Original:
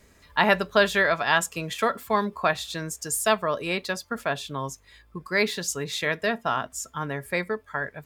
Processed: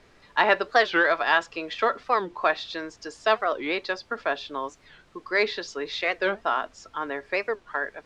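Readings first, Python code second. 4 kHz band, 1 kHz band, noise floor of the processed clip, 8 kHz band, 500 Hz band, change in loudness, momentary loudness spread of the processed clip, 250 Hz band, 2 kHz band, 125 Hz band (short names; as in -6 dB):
-1.5 dB, +1.0 dB, -58 dBFS, -17.0 dB, 0.0 dB, 0.0 dB, 13 LU, -4.0 dB, +0.5 dB, under -15 dB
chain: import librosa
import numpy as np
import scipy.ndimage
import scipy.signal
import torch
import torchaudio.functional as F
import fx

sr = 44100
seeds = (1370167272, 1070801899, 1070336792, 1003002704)

p1 = scipy.signal.sosfilt(scipy.signal.cheby1(3, 1.0, [310.0, 5100.0], 'bandpass', fs=sr, output='sos'), x)
p2 = fx.dmg_noise_colour(p1, sr, seeds[0], colour='pink', level_db=-60.0)
p3 = np.clip(p2, -10.0 ** (-19.0 / 20.0), 10.0 ** (-19.0 / 20.0))
p4 = p2 + F.gain(torch.from_numpy(p3), -12.0).numpy()
p5 = fx.air_absorb(p4, sr, metres=85.0)
y = fx.record_warp(p5, sr, rpm=45.0, depth_cents=250.0)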